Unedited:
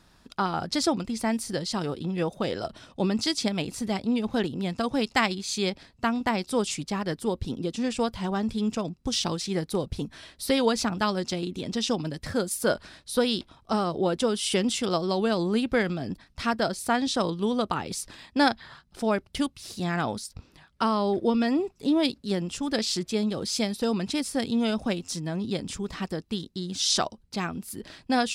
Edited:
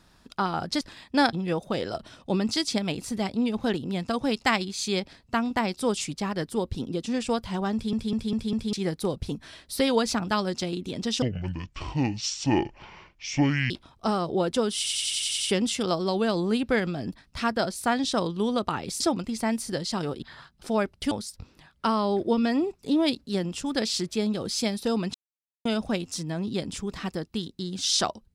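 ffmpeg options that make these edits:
-filter_complex "[0:a]asplit=22[s0][s1][s2][s3][s4][s5][s6][s7][s8][s9][s10][s11][s12][s13][s14][s15][s16][s17][s18][s19][s20][s21];[s0]atrim=end=0.812[s22];[s1]atrim=start=18.028:end=18.552[s23];[s2]atrim=start=2.028:end=8.632[s24];[s3]atrim=start=8.428:end=8.632[s25];[s4]atrim=start=8.428:end=8.632[s26];[s5]atrim=start=8.428:end=8.632[s27];[s6]atrim=start=8.428:end=8.632[s28];[s7]atrim=start=9.428:end=11.924[s29];[s8]atrim=start=11.92:end=13.36,asetpts=PTS-STARTPTS,asetrate=25578,aresample=44100[s30];[s9]atrim=start=13.356:end=14.522[s31];[s10]atrim=start=14.428:end=14.522[s32];[s11]atrim=start=14.428:end=14.522[s33];[s12]atrim=start=14.428:end=14.522[s34];[s13]atrim=start=14.428:end=14.522[s35];[s14]atrim=start=14.428:end=14.522[s36];[s15]atrim=start=14.428:end=14.522[s37];[s16]atrim=start=14.428:end=18.032[s38];[s17]atrim=start=0.808:end=2.032[s39];[s18]atrim=start=18.548:end=19.442[s40];[s19]atrim=start=20.078:end=24.11,asetpts=PTS-STARTPTS,afade=t=out:st=4.028:d=0.004:c=hsin[s41];[s20]atrim=start=24.11:end=24.62,asetpts=PTS-STARTPTS,volume=0[s42];[s21]atrim=start=24.62,asetpts=PTS-STARTPTS,afade=t=in:d=0.004:c=hsin[s43];[s22][s23]acrossfade=d=0.004:c1=hsin:c2=hsin[s44];[s44][s24]acrossfade=d=0.004:c1=hsin:c2=hsin[s45];[s45][s25]acrossfade=d=0.004:c1=hsin:c2=hsin[s46];[s46][s26]acrossfade=d=0.004:c1=hsin:c2=hsin[s47];[s47][s27]acrossfade=d=0.004:c1=hsin:c2=hsin[s48];[s48][s28]acrossfade=d=0.004:c1=hsin:c2=hsin[s49];[s49][s29]acrossfade=d=0.004:c1=hsin:c2=hsin[s50];[s50][s30]acrossfade=d=0.004:c1=hsin:c2=hsin[s51];[s51][s31]acrossfade=d=0.004:c1=hsin:c2=hsin[s52];[s52][s32]acrossfade=d=0.004:c1=hsin:c2=hsin[s53];[s53][s33]acrossfade=d=0.004:c1=hsin:c2=hsin[s54];[s54][s34]acrossfade=d=0.004:c1=hsin:c2=hsin[s55];[s55][s35]acrossfade=d=0.004:c1=hsin:c2=hsin[s56];[s56][s36]acrossfade=d=0.004:c1=hsin:c2=hsin[s57];[s57][s37]acrossfade=d=0.004:c1=hsin:c2=hsin[s58];[s58][s38]acrossfade=d=0.004:c1=hsin:c2=hsin[s59];[s59][s39]acrossfade=d=0.004:c1=hsin:c2=hsin[s60];[s60][s40]acrossfade=d=0.004:c1=hsin:c2=hsin[s61];[s41][s42][s43]concat=n=3:v=0:a=1[s62];[s61][s62]acrossfade=d=0.004:c1=hsin:c2=hsin"

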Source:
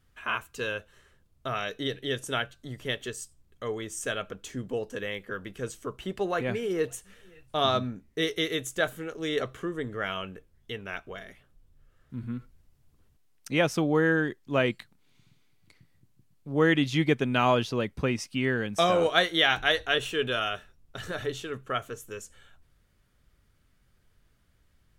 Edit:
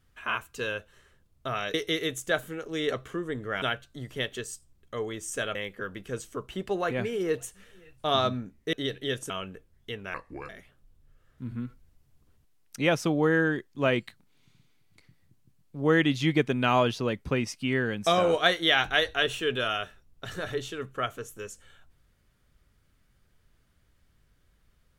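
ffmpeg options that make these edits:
-filter_complex "[0:a]asplit=8[s0][s1][s2][s3][s4][s5][s6][s7];[s0]atrim=end=1.742[s8];[s1]atrim=start=8.228:end=10.112[s9];[s2]atrim=start=2.308:end=4.242[s10];[s3]atrim=start=5.048:end=8.232[s11];[s4]atrim=start=1.738:end=2.312[s12];[s5]atrim=start=10.108:end=10.954[s13];[s6]atrim=start=10.95:end=11.21,asetpts=PTS-STARTPTS,asetrate=32634,aresample=44100[s14];[s7]atrim=start=11.206[s15];[s8][s9]acrossfade=d=0.004:c1=hsin:c2=hsin[s16];[s16][s10]acrossfade=d=0.004:c1=hsin:c2=hsin[s17];[s17][s11]acrossfade=d=0.004:c1=hsin:c2=hsin[s18];[s18][s12]acrossfade=d=0.004:c1=hsin:c2=hsin[s19];[s19][s13]acrossfade=d=0.004:c1=hsin:c2=hsin[s20];[s20][s14]acrossfade=d=0.004:c1=hsin:c2=hsin[s21];[s21][s15]acrossfade=d=0.004:c1=hsin:c2=hsin"

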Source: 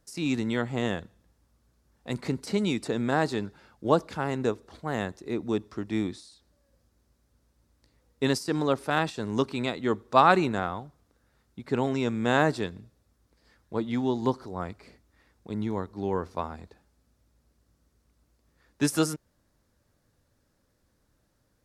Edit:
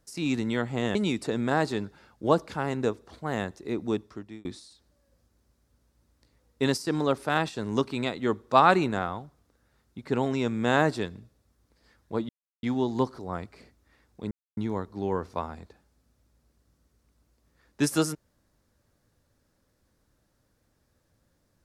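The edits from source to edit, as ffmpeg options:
-filter_complex "[0:a]asplit=5[s0][s1][s2][s3][s4];[s0]atrim=end=0.952[s5];[s1]atrim=start=2.558:end=6.06,asetpts=PTS-STARTPTS,afade=t=out:st=2.972:d=0.53[s6];[s2]atrim=start=6.06:end=13.9,asetpts=PTS-STARTPTS,afade=t=in:d=0.004:c=hsin,afade=t=out:st=7.836:d=0.004:c=hsin,apad=pad_dur=0.34[s7];[s3]atrim=start=13.9:end=15.58,asetpts=PTS-STARTPTS,afade=t=in:d=0.004:c=hsin,afade=t=out:st=1.676:d=0.004:c=hsin,apad=pad_dur=0.26[s8];[s4]atrim=start=15.58,asetpts=PTS-STARTPTS,afade=t=in:d=0.004:c=hsin[s9];[s6][s7][s8][s9]concat=n=4:v=0:a=1[s10];[s5][s10]acrossfade=d=0.004:c1=hsin:c2=hsin"

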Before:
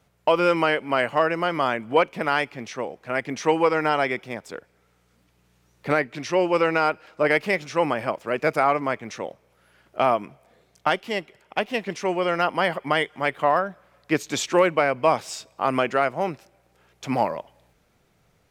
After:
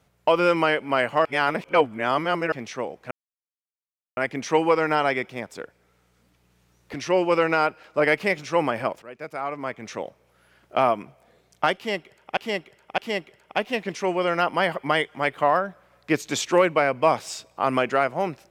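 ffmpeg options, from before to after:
-filter_complex "[0:a]asplit=8[s0][s1][s2][s3][s4][s5][s6][s7];[s0]atrim=end=1.252[s8];[s1]atrim=start=1.248:end=2.522,asetpts=PTS-STARTPTS,areverse[s9];[s2]atrim=start=2.518:end=3.11,asetpts=PTS-STARTPTS,afade=t=out:st=0.588:d=0.004:c=hsin,apad=pad_dur=1.06[s10];[s3]atrim=start=3.11:end=5.882,asetpts=PTS-STARTPTS,afade=t=in:d=0.004:c=hsin[s11];[s4]atrim=start=6.168:end=8.25,asetpts=PTS-STARTPTS,afade=t=out:st=2.078:d=0.004:c=hsin:silence=0.158489[s12];[s5]atrim=start=8.25:end=11.602,asetpts=PTS-STARTPTS,afade=t=in:d=0.94:c=qua:silence=0.158489[s13];[s6]atrim=start=10.988:end=11.602[s14];[s7]atrim=start=10.988[s15];[s8][s9]acrossfade=d=0.004:c1=hsin:c2=hsin[s16];[s10][s11]concat=n=2:v=0:a=1[s17];[s16][s17]acrossfade=d=0.004:c1=hsin:c2=hsin[s18];[s12][s13]concat=n=2:v=0:a=1[s19];[s18][s19]acrossfade=d=0.004:c1=hsin:c2=hsin[s20];[s20][s14]acrossfade=d=0.004:c1=hsin:c2=hsin[s21];[s21][s15]acrossfade=d=0.004:c1=hsin:c2=hsin"

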